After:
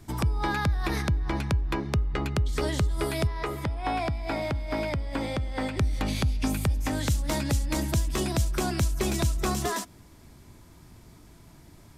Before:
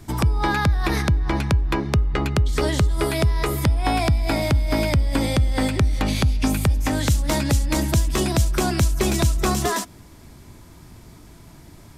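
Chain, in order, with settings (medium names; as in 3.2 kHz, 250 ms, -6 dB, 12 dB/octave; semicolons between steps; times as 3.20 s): 3.27–5.77 s: overdrive pedal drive 8 dB, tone 1.6 kHz, clips at -8.5 dBFS; trim -6.5 dB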